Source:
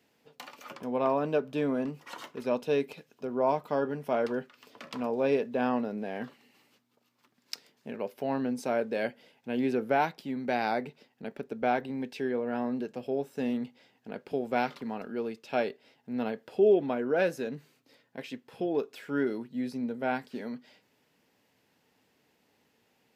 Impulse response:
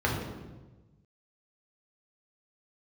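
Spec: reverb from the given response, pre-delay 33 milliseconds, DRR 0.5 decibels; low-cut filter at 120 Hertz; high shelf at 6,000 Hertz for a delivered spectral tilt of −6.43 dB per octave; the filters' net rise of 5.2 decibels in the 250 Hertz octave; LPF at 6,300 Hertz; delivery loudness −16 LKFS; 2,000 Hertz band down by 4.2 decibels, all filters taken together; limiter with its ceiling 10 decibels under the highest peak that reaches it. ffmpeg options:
-filter_complex "[0:a]highpass=120,lowpass=6300,equalizer=frequency=250:width_type=o:gain=6,equalizer=frequency=2000:width_type=o:gain=-7,highshelf=frequency=6000:gain=8.5,alimiter=limit=-22.5dB:level=0:latency=1,asplit=2[link_01][link_02];[1:a]atrim=start_sample=2205,adelay=33[link_03];[link_02][link_03]afir=irnorm=-1:irlink=0,volume=-13dB[link_04];[link_01][link_04]amix=inputs=2:normalize=0,volume=10dB"

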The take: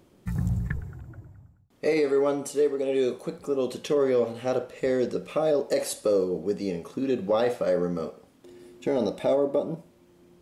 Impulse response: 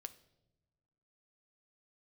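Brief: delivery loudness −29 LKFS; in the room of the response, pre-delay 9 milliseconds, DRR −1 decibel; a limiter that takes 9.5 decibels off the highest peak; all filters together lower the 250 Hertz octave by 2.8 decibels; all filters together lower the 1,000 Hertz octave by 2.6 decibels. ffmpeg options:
-filter_complex "[0:a]equalizer=frequency=250:width_type=o:gain=-3.5,equalizer=frequency=1000:width_type=o:gain=-3.5,alimiter=level_in=1dB:limit=-24dB:level=0:latency=1,volume=-1dB,asplit=2[link_01][link_02];[1:a]atrim=start_sample=2205,adelay=9[link_03];[link_02][link_03]afir=irnorm=-1:irlink=0,volume=6dB[link_04];[link_01][link_04]amix=inputs=2:normalize=0,volume=2dB"

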